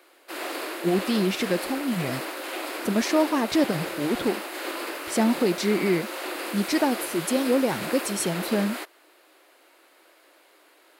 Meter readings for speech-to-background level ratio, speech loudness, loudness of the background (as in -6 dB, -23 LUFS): 6.5 dB, -26.0 LUFS, -32.5 LUFS